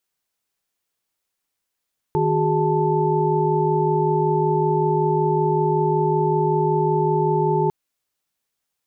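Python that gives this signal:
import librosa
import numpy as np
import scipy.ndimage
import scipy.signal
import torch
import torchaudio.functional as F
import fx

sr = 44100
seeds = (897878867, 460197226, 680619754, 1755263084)

y = fx.chord(sr, length_s=5.55, notes=(51, 66, 68, 81), wave='sine', level_db=-22.0)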